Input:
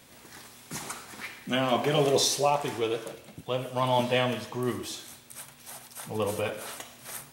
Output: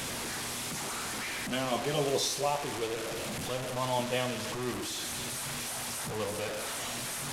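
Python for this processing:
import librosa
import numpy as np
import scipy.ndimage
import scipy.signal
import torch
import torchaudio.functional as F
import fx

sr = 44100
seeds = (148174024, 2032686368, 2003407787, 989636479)

y = fx.delta_mod(x, sr, bps=64000, step_db=-24.0)
y = y * 10.0 ** (-6.0 / 20.0)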